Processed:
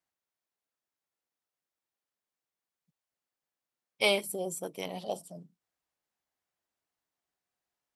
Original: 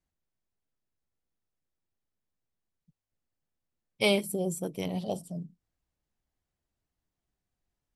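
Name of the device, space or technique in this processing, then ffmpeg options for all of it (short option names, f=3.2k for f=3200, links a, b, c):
filter by subtraction: -filter_complex "[0:a]asplit=2[a][b];[b]lowpass=920,volume=-1[c];[a][c]amix=inputs=2:normalize=0"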